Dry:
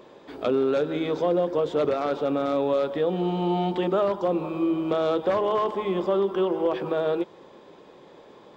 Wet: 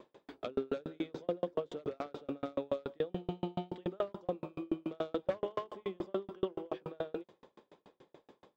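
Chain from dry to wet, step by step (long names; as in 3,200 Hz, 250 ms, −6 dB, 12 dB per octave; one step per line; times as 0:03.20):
dynamic equaliser 950 Hz, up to −5 dB, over −42 dBFS, Q 1.8
tremolo with a ramp in dB decaying 7 Hz, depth 40 dB
level −3.5 dB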